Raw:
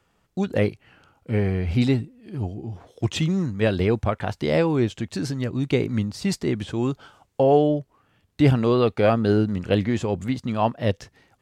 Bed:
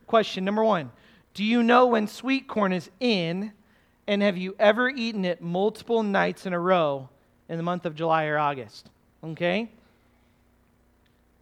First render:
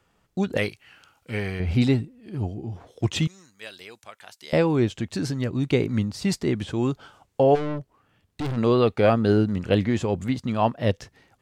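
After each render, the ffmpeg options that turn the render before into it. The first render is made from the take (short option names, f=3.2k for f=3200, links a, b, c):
-filter_complex "[0:a]asettb=1/sr,asplit=3[a][b][c];[a]atrim=end=0.574[d];[b]atrim=start=0.57:end=1.6,asetpts=PTS-STARTPTS,afade=t=in:d=0.004:c=qsin,afade=t=out:st=1.026:d=0.004:c=qsin,tiltshelf=f=1.2k:g=-8[e];[c]atrim=start=1.596[f];[d][e]acrossfade=d=0.004:c1=hsin:c2=qsin[g];[g][f]acrossfade=d=0.004:c1=qsin:c2=hsin,asettb=1/sr,asplit=3[h][i][j];[h]atrim=end=3.274[k];[i]atrim=start=3.27:end=4.53,asetpts=PTS-STARTPTS,afade=t=in:d=0.004:c=qsin,afade=t=out:st=1.256:d=0.004:c=qsin,aderivative[l];[j]atrim=start=4.526[m];[k][l]acrossfade=d=0.004:c1=hsin:c2=qsin[n];[n][m]acrossfade=d=0.004:c1=qsin:c2=hsin,asplit=3[o][p][q];[o]afade=t=out:st=7.54:d=0.02[r];[p]aeval=exprs='(tanh(20*val(0)+0.4)-tanh(0.4))/20':c=same,afade=t=in:st=7.54:d=0.02,afade=t=out:st=8.56:d=0.02[s];[q]afade=t=in:st=8.56:d=0.02[t];[r][s][t]amix=inputs=3:normalize=0"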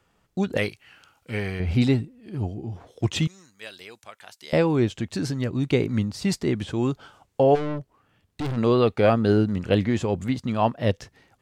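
-af anull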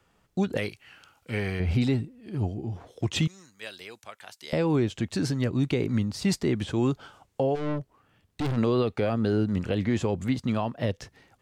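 -filter_complex "[0:a]alimiter=limit=-15.5dB:level=0:latency=1:release=150,acrossover=split=420|3000[a][b][c];[b]acompressor=threshold=-27dB:ratio=6[d];[a][d][c]amix=inputs=3:normalize=0"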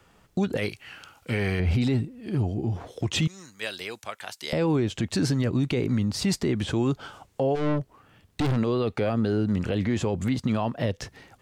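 -filter_complex "[0:a]asplit=2[a][b];[b]acompressor=threshold=-32dB:ratio=6,volume=3dB[c];[a][c]amix=inputs=2:normalize=0,alimiter=limit=-16.5dB:level=0:latency=1:release=30"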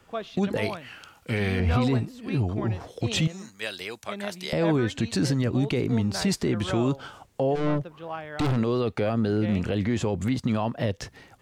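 -filter_complex "[1:a]volume=-12.5dB[a];[0:a][a]amix=inputs=2:normalize=0"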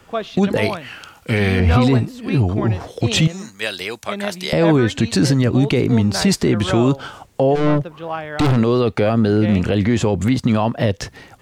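-af "volume=9dB"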